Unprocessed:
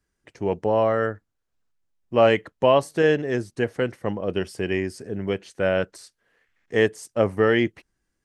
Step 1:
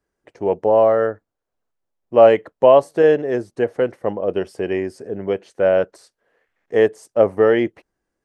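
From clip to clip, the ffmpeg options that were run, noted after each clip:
-af "equalizer=f=590:w=0.58:g=13,volume=-5.5dB"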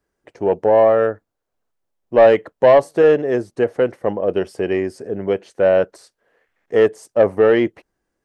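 -af "asoftclip=type=tanh:threshold=-6dB,volume=2.5dB"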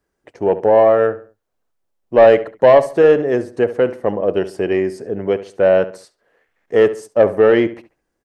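-filter_complex "[0:a]asplit=2[a][b];[b]adelay=69,lowpass=f=3.1k:p=1,volume=-14dB,asplit=2[c][d];[d]adelay=69,lowpass=f=3.1k:p=1,volume=0.35,asplit=2[e][f];[f]adelay=69,lowpass=f=3.1k:p=1,volume=0.35[g];[a][c][e][g]amix=inputs=4:normalize=0,volume=1.5dB"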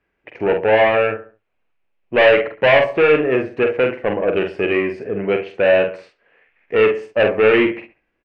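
-filter_complex "[0:a]asoftclip=type=tanh:threshold=-10.5dB,lowpass=f=2.5k:t=q:w=4.9,asplit=2[a][b];[b]adelay=46,volume=-6dB[c];[a][c]amix=inputs=2:normalize=0"

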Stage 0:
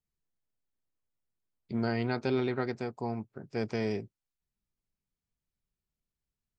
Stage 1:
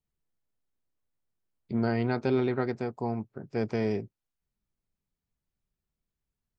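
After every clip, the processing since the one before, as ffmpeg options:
-af "highshelf=f=2.2k:g=-7.5,volume=3.5dB"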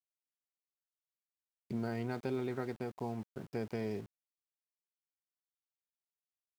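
-af "acompressor=threshold=-37dB:ratio=2,aeval=exprs='val(0)*gte(abs(val(0)),0.00316)':c=same,volume=-2dB"

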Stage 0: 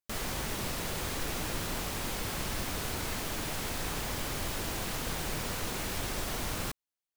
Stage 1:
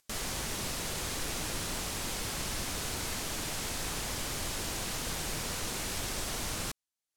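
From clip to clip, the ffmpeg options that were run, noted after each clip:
-af "aemphasis=mode=production:type=50fm,acompressor=mode=upward:threshold=-45dB:ratio=2.5,lowpass=7.6k,volume=-2dB"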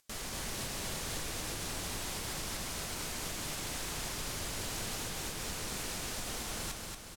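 -af "alimiter=level_in=6dB:limit=-24dB:level=0:latency=1:release=279,volume=-6dB,aecho=1:1:232|464|696|928|1160|1392|1624:0.631|0.341|0.184|0.0994|0.0537|0.029|0.0156"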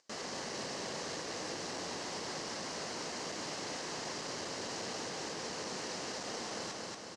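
-af "asoftclip=type=tanh:threshold=-38dB,highpass=230,equalizer=f=490:t=q:w=4:g=3,equalizer=f=1.4k:t=q:w=4:g=-5,equalizer=f=2.4k:t=q:w=4:g=-7,equalizer=f=3.5k:t=q:w=4:g=-9,lowpass=f=6k:w=0.5412,lowpass=f=6k:w=1.3066,volume=6.5dB"

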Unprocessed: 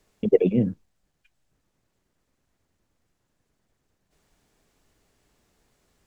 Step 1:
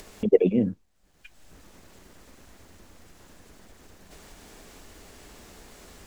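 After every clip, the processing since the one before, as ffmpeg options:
-af "equalizer=f=130:w=5.2:g=-14,acompressor=mode=upward:threshold=-31dB:ratio=2.5"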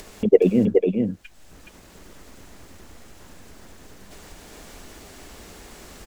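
-af "aecho=1:1:421:0.631,volume=4dB"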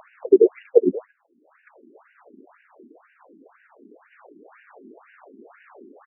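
-af "adynamicsmooth=sensitivity=7:basefreq=1.5k,afftfilt=real='re*between(b*sr/1024,280*pow(2100/280,0.5+0.5*sin(2*PI*2*pts/sr))/1.41,280*pow(2100/280,0.5+0.5*sin(2*PI*2*pts/sr))*1.41)':imag='im*between(b*sr/1024,280*pow(2100/280,0.5+0.5*sin(2*PI*2*pts/sr))/1.41,280*pow(2100/280,0.5+0.5*sin(2*PI*2*pts/sr))*1.41)':win_size=1024:overlap=0.75,volume=5.5dB"

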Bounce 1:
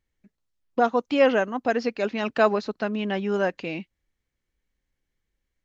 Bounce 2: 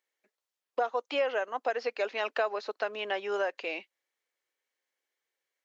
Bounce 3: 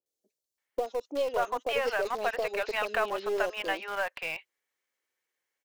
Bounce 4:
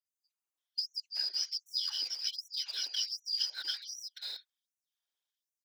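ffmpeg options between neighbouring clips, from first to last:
-filter_complex "[0:a]acrossover=split=4400[a][b];[b]acompressor=threshold=-50dB:ratio=4:attack=1:release=60[c];[a][c]amix=inputs=2:normalize=0,highpass=f=450:w=0.5412,highpass=f=450:w=1.3066,acompressor=threshold=-26dB:ratio=6"
-filter_complex "[0:a]acrossover=split=610|3900[a][b][c];[c]adelay=60[d];[b]adelay=580[e];[a][e][d]amix=inputs=3:normalize=0,asplit=2[f][g];[g]acrusher=bits=3:dc=4:mix=0:aa=0.000001,volume=-10dB[h];[f][h]amix=inputs=2:normalize=0,volume=2.5dB"
-af "afftfilt=real='real(if(lt(b,272),68*(eq(floor(b/68),0)*3+eq(floor(b/68),1)*2+eq(floor(b/68),2)*1+eq(floor(b/68),3)*0)+mod(b,68),b),0)':imag='imag(if(lt(b,272),68*(eq(floor(b/68),0)*3+eq(floor(b/68),1)*2+eq(floor(b/68),2)*1+eq(floor(b/68),3)*0)+mod(b,68),b),0)':win_size=2048:overlap=0.75,afftfilt=real='hypot(re,im)*cos(2*PI*random(0))':imag='hypot(re,im)*sin(2*PI*random(1))':win_size=512:overlap=0.75,afftfilt=real='re*gte(b*sr/1024,230*pow(5800/230,0.5+0.5*sin(2*PI*1.3*pts/sr)))':imag='im*gte(b*sr/1024,230*pow(5800/230,0.5+0.5*sin(2*PI*1.3*pts/sr)))':win_size=1024:overlap=0.75"

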